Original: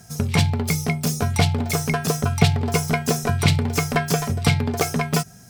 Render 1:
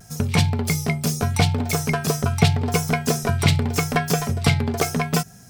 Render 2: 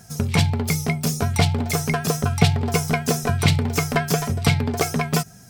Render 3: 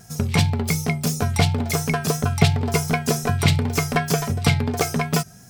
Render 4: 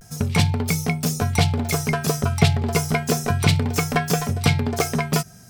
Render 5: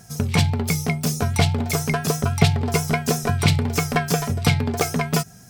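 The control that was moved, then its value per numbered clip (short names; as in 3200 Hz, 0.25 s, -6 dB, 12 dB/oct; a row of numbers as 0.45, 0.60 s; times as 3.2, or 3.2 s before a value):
vibrato, rate: 0.82, 12, 2.8, 0.32, 6.1 Hz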